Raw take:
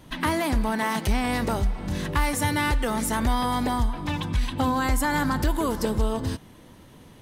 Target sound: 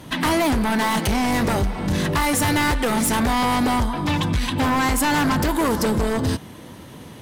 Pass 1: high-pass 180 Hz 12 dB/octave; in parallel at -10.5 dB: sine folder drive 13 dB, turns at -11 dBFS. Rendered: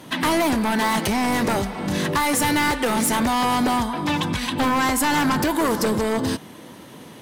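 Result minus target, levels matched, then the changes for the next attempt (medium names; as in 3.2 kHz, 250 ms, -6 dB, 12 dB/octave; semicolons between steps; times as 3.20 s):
125 Hz band -5.0 dB
change: high-pass 73 Hz 12 dB/octave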